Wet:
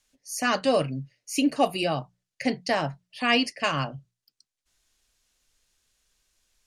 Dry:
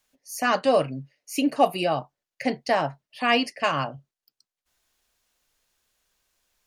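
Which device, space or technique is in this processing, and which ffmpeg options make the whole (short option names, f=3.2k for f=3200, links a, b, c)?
smiley-face EQ: -af "lowpass=8.5k,lowshelf=f=110:g=8,equalizer=f=810:t=o:w=1.6:g=-4.5,highshelf=f=6k:g=8.5,bandreject=f=60:t=h:w=6,bandreject=f=120:t=h:w=6,bandreject=f=180:t=h:w=6"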